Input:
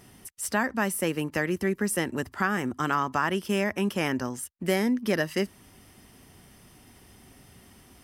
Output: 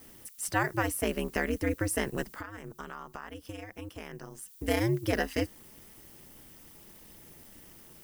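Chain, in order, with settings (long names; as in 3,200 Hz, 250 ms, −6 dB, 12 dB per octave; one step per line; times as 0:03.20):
background noise violet −52 dBFS
0:02.23–0:04.48: downward compressor 6 to 1, threshold −37 dBFS, peak gain reduction 16 dB
ring modulation 110 Hz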